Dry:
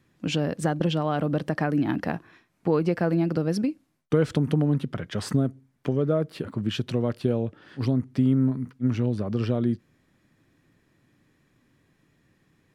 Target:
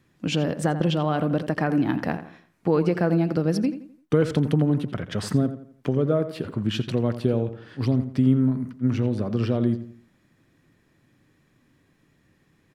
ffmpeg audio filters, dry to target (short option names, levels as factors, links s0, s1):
-filter_complex "[0:a]asplit=2[s0][s1];[s1]adelay=85,lowpass=f=3200:p=1,volume=0.266,asplit=2[s2][s3];[s3]adelay=85,lowpass=f=3200:p=1,volume=0.38,asplit=2[s4][s5];[s5]adelay=85,lowpass=f=3200:p=1,volume=0.38,asplit=2[s6][s7];[s7]adelay=85,lowpass=f=3200:p=1,volume=0.38[s8];[s0][s2][s4][s6][s8]amix=inputs=5:normalize=0,volume=1.19"